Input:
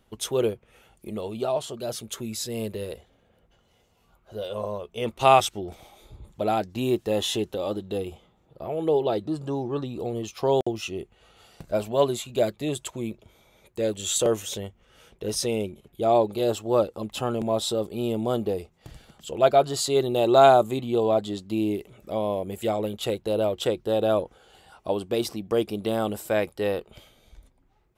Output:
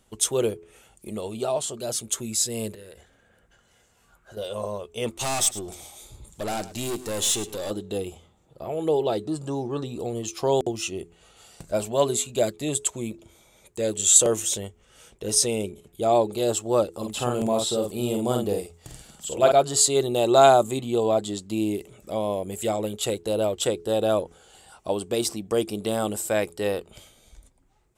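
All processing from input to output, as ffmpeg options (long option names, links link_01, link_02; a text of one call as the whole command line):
ffmpeg -i in.wav -filter_complex "[0:a]asettb=1/sr,asplit=3[link_01][link_02][link_03];[link_01]atrim=end=2.744[link_04];[link_02]atrim=start=2.74:end=4.37,asetpts=PTS-STARTPTS,afade=type=in:duration=0.004:curve=qsin,afade=type=out:start_time=1.626:duration=0.004:curve=qsin,equalizer=frequency=1600:width=3.1:gain=13,acompressor=threshold=-42dB:ratio=8:attack=3.2:release=140:knee=1:detection=peak[link_05];[link_03]atrim=start=4.366[link_06];[link_04][link_05]acrossfade=duration=0.004:curve1=hsin:curve2=qsin[link_07];[link_07][link_06]acrossfade=duration=0.004:curve1=qsin:curve2=hsin,asettb=1/sr,asplit=3[link_08][link_09][link_10];[link_08]atrim=end=5.184[link_11];[link_09]atrim=start=5.18:end=7.71,asetpts=PTS-STARTPTS,afade=type=in:duration=0.004:curve=qsin,afade=type=out:start_time=2.526:duration=0.004:curve=qsin,highshelf=frequency=3100:gain=9,aeval=exprs='(tanh(20*val(0)+0.3)-tanh(0.3))/20':channel_layout=same,aecho=1:1:106:0.168,atrim=end_sample=111573[link_12];[link_10]atrim=start=7.706[link_13];[link_11][link_12]acrossfade=duration=0.004:curve1=hsin:curve2=qsin[link_14];[link_14][link_13]acrossfade=duration=0.004:curve1=qsin:curve2=hsin,asettb=1/sr,asplit=3[link_15][link_16][link_17];[link_15]atrim=end=16.924[link_18];[link_16]atrim=start=16.92:end=19.52,asetpts=PTS-STARTPTS,afade=type=in:duration=0.004:curve=qsin,afade=type=out:start_time=2.596:duration=0.004:curve=qsin,acrossover=split=3900[link_19][link_20];[link_20]acompressor=threshold=-43dB:ratio=4:attack=1:release=60[link_21];[link_19][link_21]amix=inputs=2:normalize=0,highshelf=frequency=8400:gain=5,asplit=2[link_22][link_23];[link_23]adelay=49,volume=-4dB[link_24];[link_22][link_24]amix=inputs=2:normalize=0,atrim=end_sample=114660[link_25];[link_17]atrim=start=19.516[link_26];[link_18][link_25]acrossfade=duration=0.004:curve1=hsin:curve2=qsin[link_27];[link_27][link_26]acrossfade=duration=0.004:curve1=qsin:curve2=hsin,equalizer=frequency=8000:width_type=o:width=0.93:gain=13,bandreject=frequency=84.54:width_type=h:width=4,bandreject=frequency=169.08:width_type=h:width=4,bandreject=frequency=253.62:width_type=h:width=4,bandreject=frequency=338.16:width_type=h:width=4,bandreject=frequency=422.7:width_type=h:width=4" out.wav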